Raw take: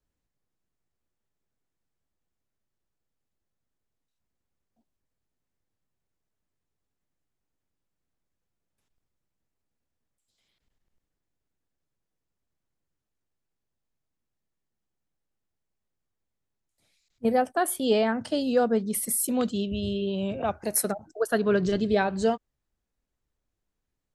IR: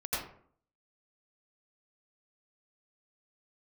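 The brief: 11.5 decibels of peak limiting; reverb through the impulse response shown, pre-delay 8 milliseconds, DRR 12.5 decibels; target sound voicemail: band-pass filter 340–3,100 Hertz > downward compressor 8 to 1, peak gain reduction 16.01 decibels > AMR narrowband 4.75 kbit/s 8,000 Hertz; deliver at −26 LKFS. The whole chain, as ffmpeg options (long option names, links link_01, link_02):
-filter_complex "[0:a]alimiter=limit=-22.5dB:level=0:latency=1,asplit=2[link_01][link_02];[1:a]atrim=start_sample=2205,adelay=8[link_03];[link_02][link_03]afir=irnorm=-1:irlink=0,volume=-18dB[link_04];[link_01][link_04]amix=inputs=2:normalize=0,highpass=340,lowpass=3100,acompressor=threshold=-43dB:ratio=8,volume=22dB" -ar 8000 -c:a libopencore_amrnb -b:a 4750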